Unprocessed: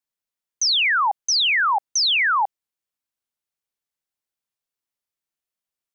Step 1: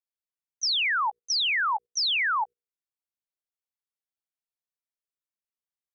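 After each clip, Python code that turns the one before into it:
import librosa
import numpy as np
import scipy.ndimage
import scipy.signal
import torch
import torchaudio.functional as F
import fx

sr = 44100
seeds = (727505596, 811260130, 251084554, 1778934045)

y = fx.hum_notches(x, sr, base_hz=60, count=8)
y = fx.level_steps(y, sr, step_db=19)
y = y * 10.0 ** (-6.0 / 20.0)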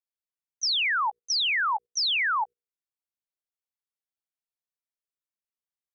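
y = x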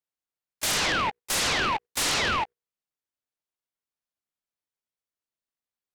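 y = fx.noise_mod_delay(x, sr, seeds[0], noise_hz=1300.0, depth_ms=0.088)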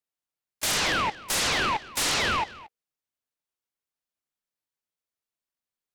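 y = x + 10.0 ** (-19.0 / 20.0) * np.pad(x, (int(228 * sr / 1000.0), 0))[:len(x)]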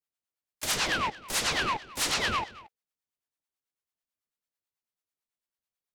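y = fx.harmonic_tremolo(x, sr, hz=9.1, depth_pct=70, crossover_hz=620.0)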